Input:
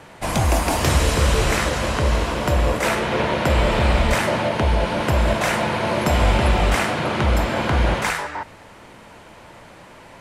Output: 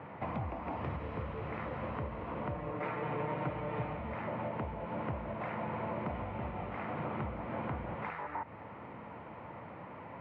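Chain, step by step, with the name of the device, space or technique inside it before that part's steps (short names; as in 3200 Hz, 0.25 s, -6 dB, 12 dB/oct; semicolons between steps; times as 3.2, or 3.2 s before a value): bass amplifier (compressor 6:1, threshold -32 dBFS, peak gain reduction 18.5 dB; speaker cabinet 82–2000 Hz, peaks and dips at 370 Hz -4 dB, 620 Hz -3 dB, 1600 Hz -9 dB); 2.54–3.97 comb 6.6 ms, depth 71%; gain -1.5 dB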